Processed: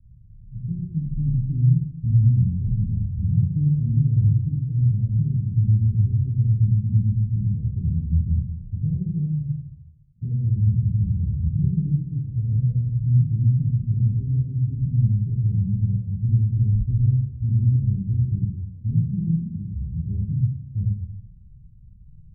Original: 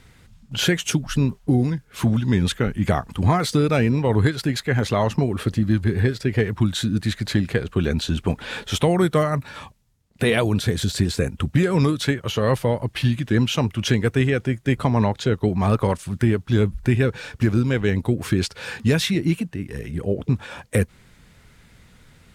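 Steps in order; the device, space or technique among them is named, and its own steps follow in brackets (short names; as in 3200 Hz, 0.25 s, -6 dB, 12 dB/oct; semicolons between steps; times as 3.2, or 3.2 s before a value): club heard from the street (limiter -11.5 dBFS, peak gain reduction 5 dB; LPF 130 Hz 24 dB/oct; reverb RT60 1.1 s, pre-delay 11 ms, DRR -8 dB)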